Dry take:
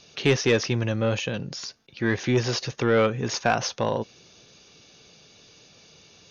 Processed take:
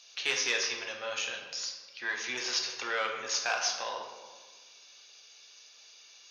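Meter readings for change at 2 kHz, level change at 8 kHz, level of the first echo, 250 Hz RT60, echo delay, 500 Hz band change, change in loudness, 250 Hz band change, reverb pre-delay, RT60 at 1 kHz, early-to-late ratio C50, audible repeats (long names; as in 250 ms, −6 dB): −3.0 dB, can't be measured, no echo audible, 1.8 s, no echo audible, −15.5 dB, −7.0 dB, −24.5 dB, 8 ms, 1.4 s, 5.0 dB, no echo audible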